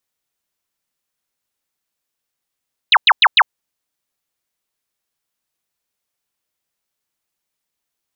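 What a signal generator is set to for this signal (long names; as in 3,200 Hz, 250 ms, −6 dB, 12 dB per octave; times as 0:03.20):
repeated falling chirps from 4,300 Hz, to 760 Hz, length 0.05 s sine, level −6 dB, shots 4, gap 0.10 s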